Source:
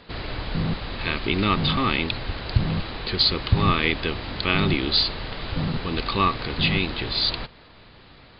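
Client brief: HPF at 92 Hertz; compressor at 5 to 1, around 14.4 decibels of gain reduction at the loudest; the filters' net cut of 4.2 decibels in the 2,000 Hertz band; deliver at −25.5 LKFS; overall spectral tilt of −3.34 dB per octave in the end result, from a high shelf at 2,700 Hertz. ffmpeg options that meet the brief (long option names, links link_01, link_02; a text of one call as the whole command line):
ffmpeg -i in.wav -af "highpass=92,equalizer=frequency=2000:width_type=o:gain=-8,highshelf=frequency=2700:gain=4.5,acompressor=threshold=-31dB:ratio=5,volume=8.5dB" out.wav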